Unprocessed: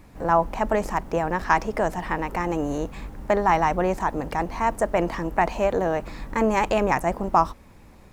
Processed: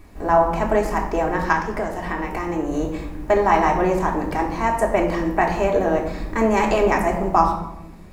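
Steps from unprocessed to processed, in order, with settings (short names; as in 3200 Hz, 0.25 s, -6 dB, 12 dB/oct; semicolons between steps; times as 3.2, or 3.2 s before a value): 1.52–2.75 compressor, threshold -24 dBFS, peak gain reduction 9.5 dB; reverb RT60 0.90 s, pre-delay 3 ms, DRR -0.5 dB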